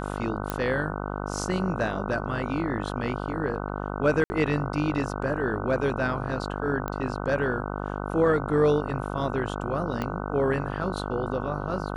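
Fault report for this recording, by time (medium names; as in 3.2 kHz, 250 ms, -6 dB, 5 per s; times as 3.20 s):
buzz 50 Hz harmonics 30 -32 dBFS
0.50 s: pop -13 dBFS
4.24–4.30 s: dropout 60 ms
6.88 s: pop -17 dBFS
10.02 s: pop -16 dBFS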